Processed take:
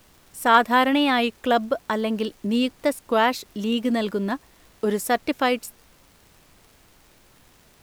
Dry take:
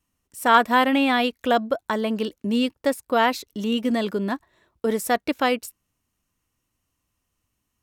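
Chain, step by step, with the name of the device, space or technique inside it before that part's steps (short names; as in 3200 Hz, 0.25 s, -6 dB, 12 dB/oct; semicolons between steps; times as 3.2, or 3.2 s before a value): warped LP (record warp 33 1/3 rpm, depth 100 cents; crackle; pink noise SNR 31 dB)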